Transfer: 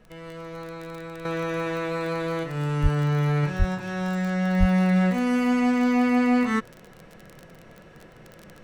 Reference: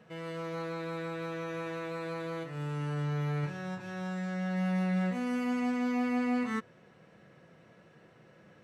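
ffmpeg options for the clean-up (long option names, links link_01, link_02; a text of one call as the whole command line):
ffmpeg -i in.wav -filter_complex "[0:a]adeclick=threshold=4,asplit=3[link_01][link_02][link_03];[link_01]afade=type=out:start_time=2.82:duration=0.02[link_04];[link_02]highpass=frequency=140:width=0.5412,highpass=frequency=140:width=1.3066,afade=type=in:start_time=2.82:duration=0.02,afade=type=out:start_time=2.94:duration=0.02[link_05];[link_03]afade=type=in:start_time=2.94:duration=0.02[link_06];[link_04][link_05][link_06]amix=inputs=3:normalize=0,asplit=3[link_07][link_08][link_09];[link_07]afade=type=out:start_time=3.58:duration=0.02[link_10];[link_08]highpass=frequency=140:width=0.5412,highpass=frequency=140:width=1.3066,afade=type=in:start_time=3.58:duration=0.02,afade=type=out:start_time=3.7:duration=0.02[link_11];[link_09]afade=type=in:start_time=3.7:duration=0.02[link_12];[link_10][link_11][link_12]amix=inputs=3:normalize=0,asplit=3[link_13][link_14][link_15];[link_13]afade=type=out:start_time=4.59:duration=0.02[link_16];[link_14]highpass=frequency=140:width=0.5412,highpass=frequency=140:width=1.3066,afade=type=in:start_time=4.59:duration=0.02,afade=type=out:start_time=4.71:duration=0.02[link_17];[link_15]afade=type=in:start_time=4.71:duration=0.02[link_18];[link_16][link_17][link_18]amix=inputs=3:normalize=0,agate=range=-21dB:threshold=-40dB,asetnsamples=nb_out_samples=441:pad=0,asendcmd='1.25 volume volume -9.5dB',volume=0dB" out.wav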